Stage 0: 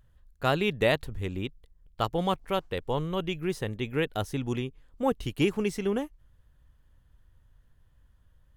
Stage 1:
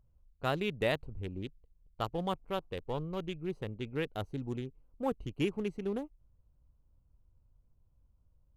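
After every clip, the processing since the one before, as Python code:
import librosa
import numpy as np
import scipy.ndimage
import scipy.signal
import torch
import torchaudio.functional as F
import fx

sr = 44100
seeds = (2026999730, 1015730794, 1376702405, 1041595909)

y = fx.wiener(x, sr, points=25)
y = F.gain(torch.from_numpy(y), -6.5).numpy()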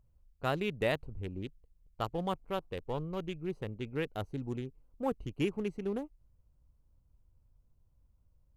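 y = fx.peak_eq(x, sr, hz=3500.0, db=-3.0, octaves=0.43)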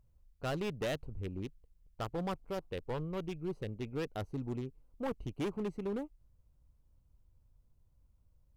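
y = np.clip(x, -10.0 ** (-31.5 / 20.0), 10.0 ** (-31.5 / 20.0))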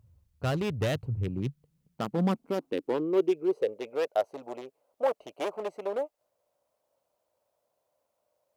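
y = fx.filter_sweep_highpass(x, sr, from_hz=92.0, to_hz=610.0, start_s=0.79, end_s=4.09, q=5.0)
y = F.gain(torch.from_numpy(y), 5.0).numpy()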